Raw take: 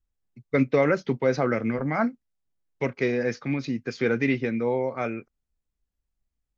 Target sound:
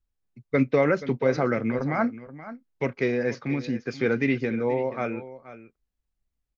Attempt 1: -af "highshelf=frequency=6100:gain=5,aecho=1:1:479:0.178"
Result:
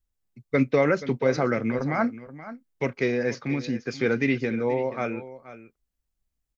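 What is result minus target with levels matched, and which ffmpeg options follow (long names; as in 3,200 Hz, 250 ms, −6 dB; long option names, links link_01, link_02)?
8,000 Hz band +5.0 dB
-af "highshelf=frequency=6100:gain=-5.5,aecho=1:1:479:0.178"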